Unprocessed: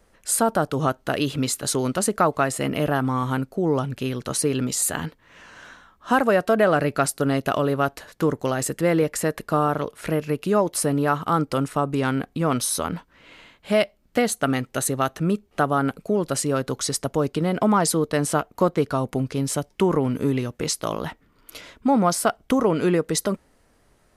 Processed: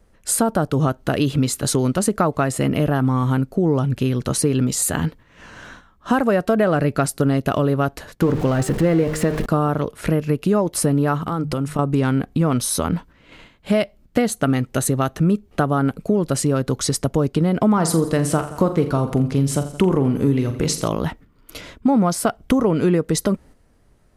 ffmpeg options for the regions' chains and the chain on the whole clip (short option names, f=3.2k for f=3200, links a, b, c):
-filter_complex "[0:a]asettb=1/sr,asplit=3[a][b][c];[a]atrim=end=8.224[d];[b]atrim=start=8.22:end=9.46,asetpts=PTS-STARTPTS,afade=t=in:d=0.004:c=qsin,afade=t=out:st=1.236:d=0.004:c=qsin,aeval=exprs='val(0)+0.5*0.0447*sgn(val(0))':c=same,highshelf=f=5.6k:g=-11,bandreject=f=77.17:t=h:w=4,bandreject=f=154.34:t=h:w=4,bandreject=f=231.51:t=h:w=4,bandreject=f=308.68:t=h:w=4,bandreject=f=385.85:t=h:w=4,bandreject=f=463.02:t=h:w=4,bandreject=f=540.19:t=h:w=4,bandreject=f=617.36:t=h:w=4,bandreject=f=694.53:t=h:w=4,bandreject=f=771.7:t=h:w=4,bandreject=f=848.87:t=h:w=4,bandreject=f=926.04:t=h:w=4,bandreject=f=1.00321k:t=h:w=4,bandreject=f=1.08038k:t=h:w=4,bandreject=f=1.15755k:t=h:w=4,bandreject=f=1.23472k:t=h:w=4,bandreject=f=1.31189k:t=h:w=4,bandreject=f=1.38906k:t=h:w=4,bandreject=f=1.46623k:t=h:w=4,bandreject=f=1.5434k:t=h:w=4,bandreject=f=1.62057k:t=h:w=4,bandreject=f=1.69774k:t=h:w=4,bandreject=f=1.77491k:t=h:w=4,bandreject=f=1.85208k:t=h:w=4,bandreject=f=1.92925k:t=h:w=4,bandreject=f=2.00642k:t=h:w=4,bandreject=f=2.08359k:t=h:w=4,bandreject=f=2.16076k:t=h:w=4,bandreject=f=2.23793k:t=h:w=4[e];[c]atrim=start=9.456[f];[d][e]acrossfade=d=0.004:c1=hsin:c2=qsin[g];[g][f]acrossfade=d=0.004:c1=qsin:c2=hsin,asettb=1/sr,asplit=3[h][i][j];[h]atrim=end=11.194[k];[i]atrim=start=11.19:end=11.79,asetpts=PTS-STARTPTS,afade=t=in:d=0.004:c=qsin,afade=t=out:st=0.596:d=0.004:c=qsin,bandreject=f=50:t=h:w=6,bandreject=f=100:t=h:w=6,bandreject=f=150:t=h:w=6,bandreject=f=200:t=h:w=6,acompressor=threshold=-26dB:ratio=5:attack=3.2:release=140:knee=1:detection=peak[l];[j]atrim=start=11.786[m];[k][l]acrossfade=d=0.004:c1=hsin:c2=qsin[n];[n][m]acrossfade=d=0.004:c1=qsin:c2=hsin,asettb=1/sr,asplit=3[o][p][q];[o]atrim=end=17.734[r];[p]atrim=start=17.73:end=20.88,asetpts=PTS-STARTPTS,afade=t=in:d=0.004:c=qsin,afade=t=out:st=3.146:d=0.004:c=qsin,asplit=2[s][t];[t]adelay=43,volume=-10.5dB[u];[s][u]amix=inputs=2:normalize=0,atrim=end_sample=138915,aecho=1:1:85|170|255|340|425:0.178|0.0942|0.05|0.0265|0.014,atrim=end_sample=138915[v];[q]atrim=start=20.876[w];[r][v]acrossfade=d=0.004:c1=hsin:c2=qsin[x];[x][w]acrossfade=d=0.004:c1=qsin:c2=hsin,agate=range=-7dB:threshold=-47dB:ratio=16:detection=peak,lowshelf=f=310:g=10,acompressor=threshold=-21dB:ratio=2,volume=3.5dB"